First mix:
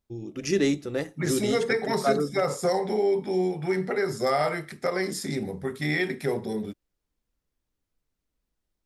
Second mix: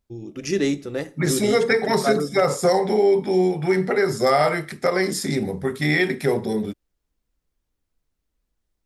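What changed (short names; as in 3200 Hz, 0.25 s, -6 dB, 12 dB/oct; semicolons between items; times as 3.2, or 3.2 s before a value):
first voice: send +11.5 dB; second voice +6.5 dB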